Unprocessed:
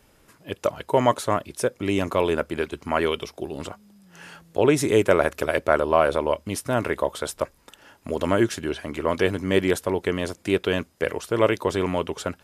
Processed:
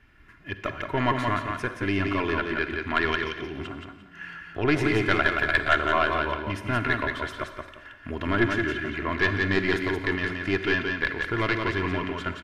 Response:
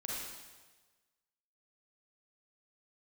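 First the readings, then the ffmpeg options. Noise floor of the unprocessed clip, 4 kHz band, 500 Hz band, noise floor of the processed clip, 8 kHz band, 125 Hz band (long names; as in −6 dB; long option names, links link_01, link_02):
−59 dBFS, 0.0 dB, −7.5 dB, −49 dBFS, −14.5 dB, 0.0 dB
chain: -filter_complex "[0:a]firequalizer=gain_entry='entry(150,0);entry(500,-14);entry(1700,5);entry(3700,-9);entry(7800,-23)':delay=0.05:min_phase=1,aeval=exprs='(tanh(4.47*val(0)+0.65)-tanh(0.65))/4.47':channel_layout=same,aecho=1:1:2.9:0.45,aecho=1:1:174|348|522:0.596|0.137|0.0315,asplit=2[link_01][link_02];[1:a]atrim=start_sample=2205[link_03];[link_02][link_03]afir=irnorm=-1:irlink=0,volume=-9dB[link_04];[link_01][link_04]amix=inputs=2:normalize=0,volume=3.5dB"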